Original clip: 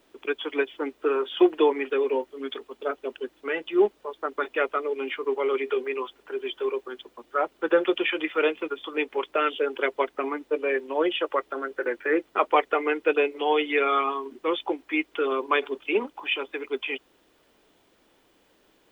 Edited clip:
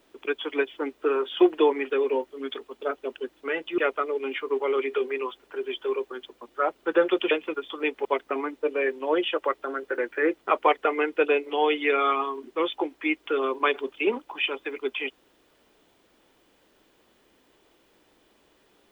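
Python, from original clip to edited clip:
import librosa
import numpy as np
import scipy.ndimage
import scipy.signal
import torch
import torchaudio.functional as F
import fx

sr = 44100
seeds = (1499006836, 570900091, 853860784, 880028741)

y = fx.edit(x, sr, fx.cut(start_s=3.78, length_s=0.76),
    fx.cut(start_s=8.07, length_s=0.38),
    fx.cut(start_s=9.19, length_s=0.74), tone=tone)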